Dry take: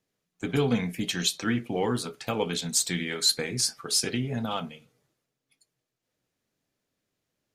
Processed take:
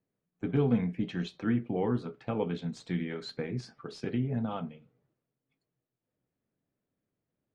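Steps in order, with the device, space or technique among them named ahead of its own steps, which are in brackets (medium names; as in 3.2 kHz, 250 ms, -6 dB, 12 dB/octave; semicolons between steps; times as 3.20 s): phone in a pocket (low-pass 3.2 kHz 12 dB/octave; peaking EQ 160 Hz +5 dB 2.8 oct; treble shelf 2.3 kHz -12 dB); trim -5 dB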